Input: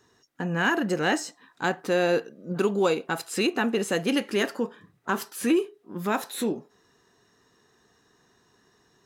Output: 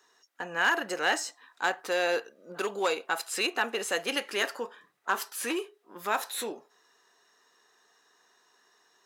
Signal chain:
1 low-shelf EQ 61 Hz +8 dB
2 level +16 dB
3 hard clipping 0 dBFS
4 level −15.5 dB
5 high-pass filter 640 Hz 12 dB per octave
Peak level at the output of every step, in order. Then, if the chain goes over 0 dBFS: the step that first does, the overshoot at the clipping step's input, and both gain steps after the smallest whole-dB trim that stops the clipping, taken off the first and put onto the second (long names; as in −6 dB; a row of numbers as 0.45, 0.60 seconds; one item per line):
−10.5, +5.5, 0.0, −15.5, −12.0 dBFS
step 2, 5.5 dB
step 2 +10 dB, step 4 −9.5 dB